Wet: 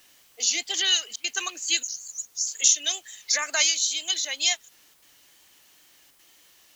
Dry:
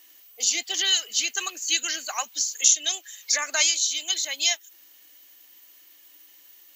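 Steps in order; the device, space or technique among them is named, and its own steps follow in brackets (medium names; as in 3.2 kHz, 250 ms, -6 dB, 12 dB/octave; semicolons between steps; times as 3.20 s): 1.83–2.47 s: elliptic band-stop 140–5900 Hz; worn cassette (low-pass 8.6 kHz 12 dB/octave; wow and flutter; level dips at 1.16/4.94/6.11 s, 80 ms -20 dB; white noise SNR 32 dB)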